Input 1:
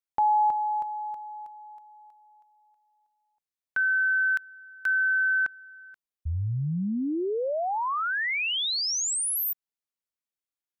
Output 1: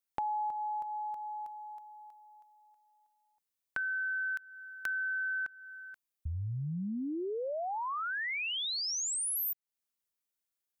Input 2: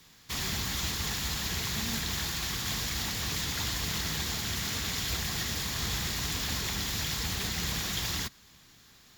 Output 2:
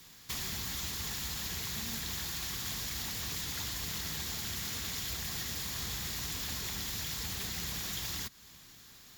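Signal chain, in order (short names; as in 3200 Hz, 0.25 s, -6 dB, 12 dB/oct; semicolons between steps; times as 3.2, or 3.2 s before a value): high shelf 7500 Hz +7.5 dB; compressor 3:1, threshold -37 dBFS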